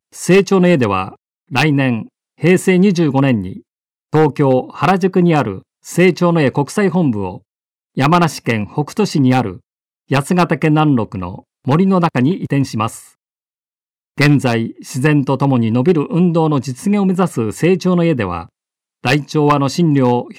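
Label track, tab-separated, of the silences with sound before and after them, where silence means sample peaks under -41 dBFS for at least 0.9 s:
13.110000	14.180000	silence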